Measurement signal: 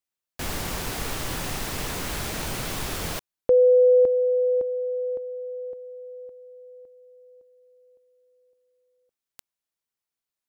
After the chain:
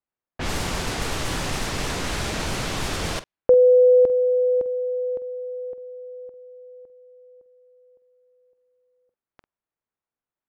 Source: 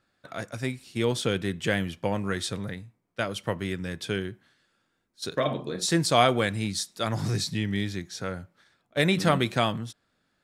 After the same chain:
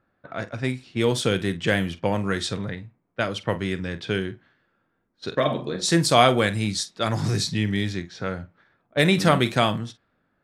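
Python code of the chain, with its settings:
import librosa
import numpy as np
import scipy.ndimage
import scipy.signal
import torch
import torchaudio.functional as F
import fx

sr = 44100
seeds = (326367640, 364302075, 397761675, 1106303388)

y = fx.doubler(x, sr, ms=47.0, db=-14)
y = fx.env_lowpass(y, sr, base_hz=1500.0, full_db=-23.0)
y = y * librosa.db_to_amplitude(4.0)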